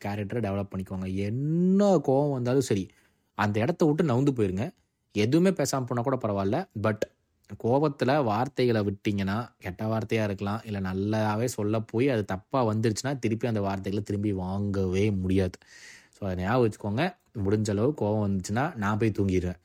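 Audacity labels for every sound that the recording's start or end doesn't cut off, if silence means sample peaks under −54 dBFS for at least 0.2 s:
3.380000	4.780000	sound
5.140000	7.110000	sound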